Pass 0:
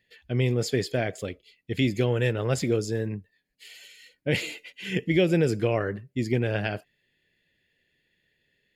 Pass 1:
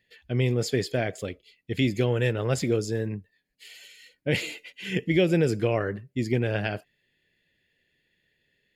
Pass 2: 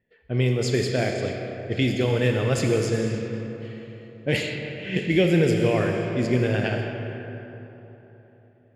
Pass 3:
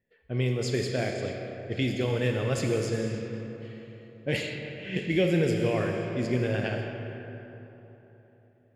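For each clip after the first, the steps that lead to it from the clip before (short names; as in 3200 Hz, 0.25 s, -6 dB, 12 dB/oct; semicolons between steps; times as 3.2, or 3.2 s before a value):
nothing audible
Schroeder reverb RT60 3.8 s, combs from 28 ms, DRR 2 dB; low-pass opened by the level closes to 1100 Hz, open at -19.5 dBFS; gain +1.5 dB
resonator 550 Hz, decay 0.43 s, mix 60%; gain +2.5 dB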